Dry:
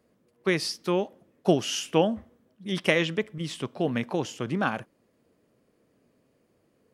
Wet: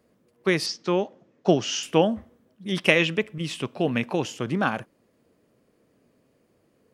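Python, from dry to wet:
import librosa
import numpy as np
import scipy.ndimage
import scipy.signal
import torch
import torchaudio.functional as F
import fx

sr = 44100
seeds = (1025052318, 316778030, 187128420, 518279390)

y = fx.ellip_bandpass(x, sr, low_hz=110.0, high_hz=6500.0, order=3, stop_db=40, at=(0.66, 1.83))
y = fx.peak_eq(y, sr, hz=2600.0, db=8.5, octaves=0.22, at=(2.84, 4.28))
y = y * librosa.db_to_amplitude(2.5)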